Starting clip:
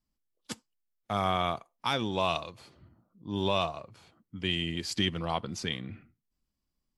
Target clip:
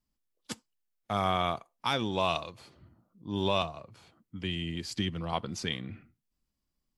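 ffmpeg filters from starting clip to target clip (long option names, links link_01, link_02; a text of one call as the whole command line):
ffmpeg -i in.wav -filter_complex "[0:a]asettb=1/sr,asplit=3[link_01][link_02][link_03];[link_01]atrim=end=3.624[link_04];[link_02]atrim=start=3.62:end=5.33,asetpts=PTS-STARTPTS,afade=type=in:duration=0.004:curve=qsin,afade=type=out:start_time=1.706:duration=0.004:curve=qsin,acrossover=split=270[link_05][link_06];[link_06]acompressor=threshold=-44dB:ratio=1.5[link_07];[link_05][link_07]amix=inputs=2:normalize=0[link_08];[link_03]atrim=start=5.326[link_09];[link_04][link_08]acrossfade=duration=0.004:curve1=hsin:curve2=qsin[link_10];[link_10][link_09]acrossfade=duration=0.004:curve1=qsin:curve2=hsin" out.wav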